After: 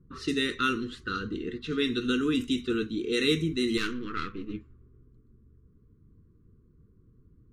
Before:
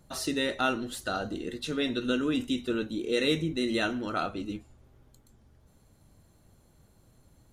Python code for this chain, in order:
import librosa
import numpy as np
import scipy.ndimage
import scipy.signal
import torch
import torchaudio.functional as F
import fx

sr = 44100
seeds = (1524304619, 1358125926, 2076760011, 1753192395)

y = fx.halfwave_gain(x, sr, db=-12.0, at=(3.77, 4.54))
y = scipy.signal.sosfilt(scipy.signal.ellip(3, 1.0, 50, [450.0, 1100.0], 'bandstop', fs=sr, output='sos'), y)
y = fx.env_lowpass(y, sr, base_hz=600.0, full_db=-26.5)
y = y * 10.0 ** (2.5 / 20.0)